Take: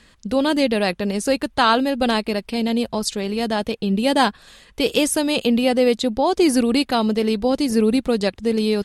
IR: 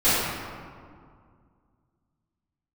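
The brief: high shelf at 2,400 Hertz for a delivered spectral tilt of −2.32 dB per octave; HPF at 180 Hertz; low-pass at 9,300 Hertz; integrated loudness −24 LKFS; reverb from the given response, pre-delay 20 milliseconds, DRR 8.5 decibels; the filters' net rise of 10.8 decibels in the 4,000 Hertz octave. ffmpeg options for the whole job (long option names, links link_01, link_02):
-filter_complex "[0:a]highpass=180,lowpass=9300,highshelf=frequency=2400:gain=8.5,equalizer=frequency=4000:width_type=o:gain=6,asplit=2[link_01][link_02];[1:a]atrim=start_sample=2205,adelay=20[link_03];[link_02][link_03]afir=irnorm=-1:irlink=0,volume=-27.5dB[link_04];[link_01][link_04]amix=inputs=2:normalize=0,volume=-8dB"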